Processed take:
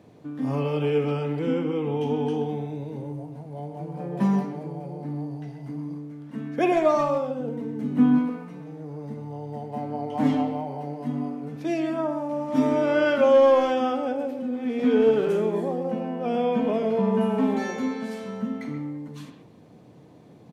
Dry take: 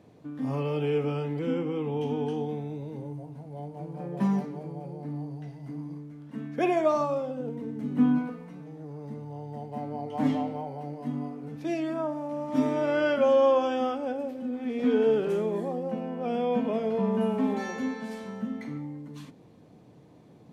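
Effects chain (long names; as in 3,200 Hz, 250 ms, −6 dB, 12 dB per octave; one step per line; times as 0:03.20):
high-pass filter 61 Hz
far-end echo of a speakerphone 130 ms, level −8 dB
level +3.5 dB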